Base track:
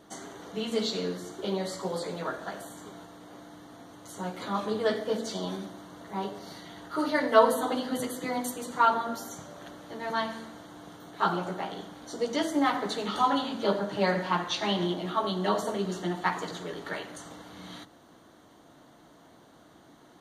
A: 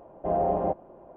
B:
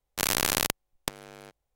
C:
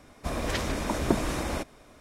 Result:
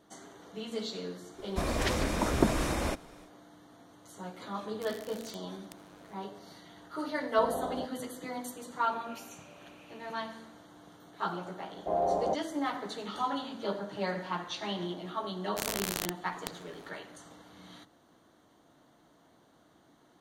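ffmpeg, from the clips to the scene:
-filter_complex "[3:a]asplit=2[a][b];[2:a]asplit=2[c][d];[1:a]asplit=2[e][f];[0:a]volume=-7.5dB[g];[c]acompressor=threshold=-34dB:ratio=6:attack=3.2:release=140:knee=1:detection=peak[h];[b]asuperpass=centerf=2700:order=4:qfactor=4.3[i];[f]lowshelf=f=260:g=-10[j];[a]atrim=end=2,asetpts=PTS-STARTPTS,volume=-0.5dB,afade=t=in:d=0.1,afade=t=out:st=1.9:d=0.1,adelay=1320[k];[h]atrim=end=1.75,asetpts=PTS-STARTPTS,volume=-13dB,afade=t=in:d=0.004:c=hsin,afade=t=out:st=1.746:d=0.004:c=hsin,adelay=4640[l];[e]atrim=end=1.16,asetpts=PTS-STARTPTS,volume=-12dB,afade=t=in:d=0.004:c=hsin,afade=t=out:st=1.156:d=0.004:c=hsin,adelay=7130[m];[i]atrim=end=2,asetpts=PTS-STARTPTS,volume=-12dB,afade=t=in:d=0.004:c=hsin,afade=t=out:st=1.996:d=0.004:c=hsin,adelay=8620[n];[j]atrim=end=1.16,asetpts=PTS-STARTPTS,volume=-2dB,afade=t=in:d=0.004:c=hsin,afade=t=out:st=1.156:d=0.004:c=hsin,adelay=512442S[o];[d]atrim=end=1.75,asetpts=PTS-STARTPTS,volume=-9dB,afade=t=in:d=0.004:c=hsin,afade=t=out:st=1.746:d=0.004:c=hsin,adelay=15390[p];[g][k][l][m][n][o][p]amix=inputs=7:normalize=0"

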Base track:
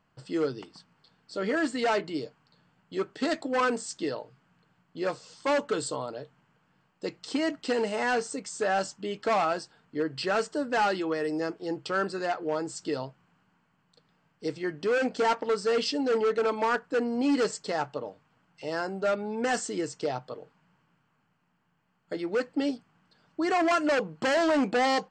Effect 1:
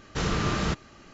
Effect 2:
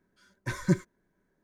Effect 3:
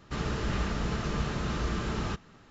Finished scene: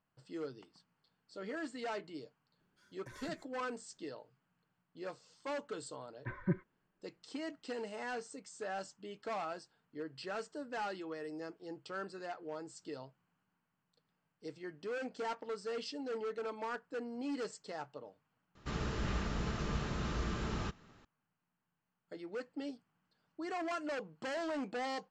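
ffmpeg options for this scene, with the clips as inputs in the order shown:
-filter_complex "[2:a]asplit=2[a][b];[0:a]volume=-14dB[c];[a]acompressor=threshold=-41dB:ratio=6:attack=3.2:release=140:knee=1:detection=peak[d];[b]lowpass=f=2.2k:w=0.5412,lowpass=f=2.2k:w=1.3066[e];[c]asplit=2[f][g];[f]atrim=end=18.554[h];[3:a]atrim=end=2.5,asetpts=PTS-STARTPTS,volume=-6dB[i];[g]atrim=start=21.046[j];[d]atrim=end=1.43,asetpts=PTS-STARTPTS,volume=-7dB,afade=t=in:d=0.004:c=hsin,afade=t=out:st=1.426:d=0.004:c=hsin,adelay=2600[k];[e]atrim=end=1.43,asetpts=PTS-STARTPTS,volume=-9dB,afade=t=in:d=0.004:c=hsin,afade=t=out:st=1.426:d=0.004:c=hsin,adelay=5790[l];[h][i]acrossfade=d=0.004:c1=hsin:c2=hsin[m];[m][j]acrossfade=d=0.004:c1=hsin:c2=hsin[n];[n][k][l]amix=inputs=3:normalize=0"

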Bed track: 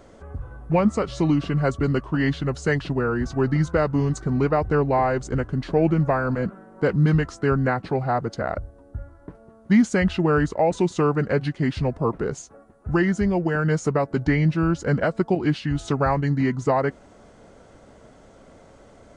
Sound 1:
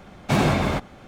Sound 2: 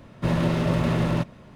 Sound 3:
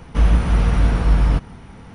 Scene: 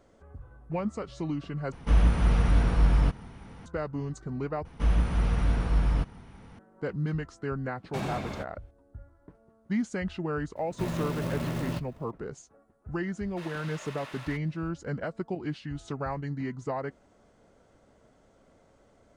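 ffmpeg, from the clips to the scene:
-filter_complex "[3:a]asplit=2[a][b];[2:a]asplit=2[c][d];[0:a]volume=-12dB[e];[1:a]agate=range=-11dB:threshold=-33dB:ratio=16:release=100:detection=peak[f];[c]acrusher=bits=4:mode=log:mix=0:aa=0.000001[g];[d]highpass=1.2k[h];[e]asplit=3[i][j][k];[i]atrim=end=1.724[l];[a]atrim=end=1.94,asetpts=PTS-STARTPTS,volume=-6.5dB[m];[j]atrim=start=3.656:end=4.654[n];[b]atrim=end=1.94,asetpts=PTS-STARTPTS,volume=-9.5dB[o];[k]atrim=start=6.586[p];[f]atrim=end=1.07,asetpts=PTS-STARTPTS,volume=-14dB,afade=t=in:d=0.004:c=hsin,afade=t=out:st=1.066:d=0.004:c=hsin,adelay=7640[q];[g]atrim=end=1.55,asetpts=PTS-STARTPTS,volume=-9.5dB,afade=t=in:d=0.004:c=hsin,afade=t=out:st=1.546:d=0.004:c=hsin,adelay=10560[r];[h]atrim=end=1.55,asetpts=PTS-STARTPTS,volume=-9.5dB,afade=t=in:d=0.004:c=hsin,afade=t=out:st=1.546:d=0.004:c=hsin,adelay=13140[s];[l][m]acrossfade=d=0.004:c1=hsin:c2=hsin[t];[t][n]acrossfade=d=0.004:c1=hsin:c2=hsin[u];[u][o]acrossfade=d=0.004:c1=hsin:c2=hsin[v];[v][p]acrossfade=d=0.004:c1=hsin:c2=hsin[w];[w][q][r][s]amix=inputs=4:normalize=0"

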